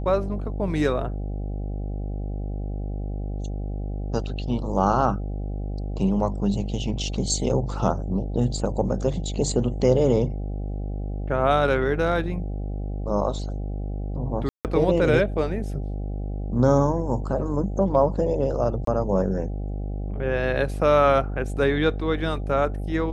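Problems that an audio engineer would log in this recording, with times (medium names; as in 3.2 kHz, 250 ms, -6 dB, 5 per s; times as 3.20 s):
buzz 50 Hz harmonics 16 -29 dBFS
14.49–14.65 s: dropout 158 ms
18.85–18.87 s: dropout 23 ms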